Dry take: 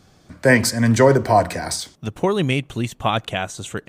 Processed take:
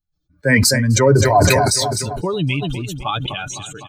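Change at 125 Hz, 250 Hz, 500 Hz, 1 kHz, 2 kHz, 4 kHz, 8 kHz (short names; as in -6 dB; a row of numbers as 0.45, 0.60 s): +4.5, 0.0, +1.0, +1.5, +2.0, +6.0, +7.5 dB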